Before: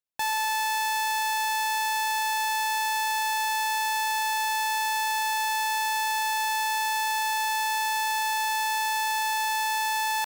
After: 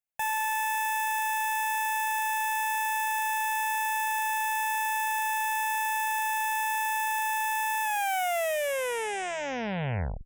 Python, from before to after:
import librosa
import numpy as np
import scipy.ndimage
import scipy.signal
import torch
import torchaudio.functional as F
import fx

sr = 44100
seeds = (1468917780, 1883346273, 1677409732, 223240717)

y = fx.tape_stop_end(x, sr, length_s=2.42)
y = fx.fixed_phaser(y, sr, hz=1200.0, stages=6)